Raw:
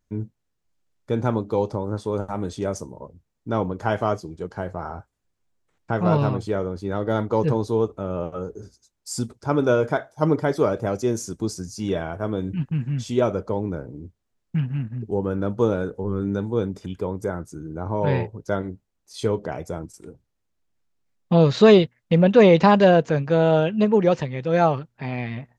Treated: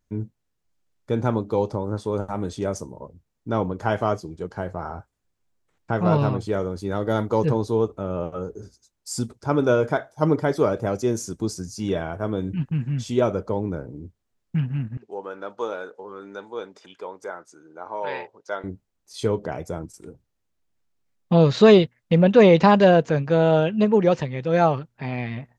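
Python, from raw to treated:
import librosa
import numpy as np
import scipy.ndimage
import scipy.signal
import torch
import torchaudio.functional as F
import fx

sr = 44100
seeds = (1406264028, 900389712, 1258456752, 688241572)

y = fx.high_shelf(x, sr, hz=fx.line((6.52, 5400.0), (7.45, 7800.0)), db=10.5, at=(6.52, 7.45), fade=0.02)
y = fx.bandpass_edges(y, sr, low_hz=690.0, high_hz=6200.0, at=(14.97, 18.64))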